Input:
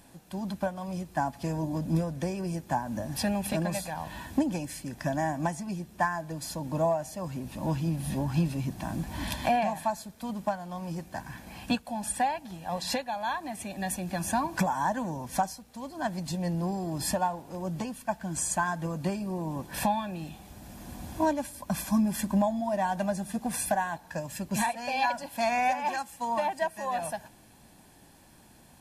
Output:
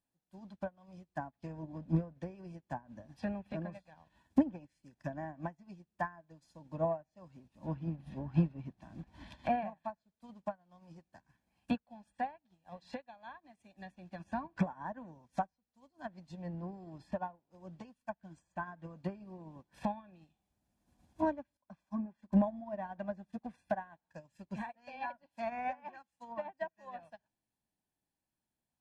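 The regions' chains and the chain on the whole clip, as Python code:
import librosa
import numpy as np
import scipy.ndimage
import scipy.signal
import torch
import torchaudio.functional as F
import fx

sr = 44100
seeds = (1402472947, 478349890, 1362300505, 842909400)

y = fx.chain(x, sr, fx.lowpass(hz=1400.0, slope=6),
    fx.low_shelf(hz=260.0, db=-9.0),
    fx.band_widen(depth_pct=40), at=(21.57, 22.33))
y = fx.env_lowpass_down(y, sr, base_hz=1800.0, full_db=-25.5)
y = fx.dynamic_eq(y, sr, hz=860.0, q=3.2, threshold_db=-42.0, ratio=4.0, max_db=-4)
y = fx.upward_expand(y, sr, threshold_db=-45.0, expansion=2.5)
y = y * 10.0 ** (1.0 / 20.0)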